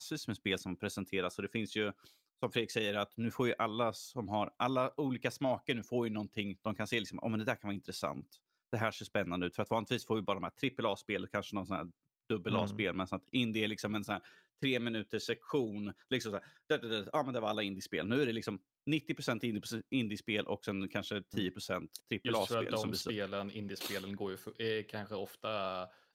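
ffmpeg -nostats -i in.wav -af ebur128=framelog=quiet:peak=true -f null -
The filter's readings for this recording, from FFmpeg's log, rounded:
Integrated loudness:
  I:         -37.3 LUFS
  Threshold: -47.4 LUFS
Loudness range:
  LRA:         2.4 LU
  Threshold: -57.3 LUFS
  LRA low:   -38.3 LUFS
  LRA high:  -35.9 LUFS
True peak:
  Peak:      -16.1 dBFS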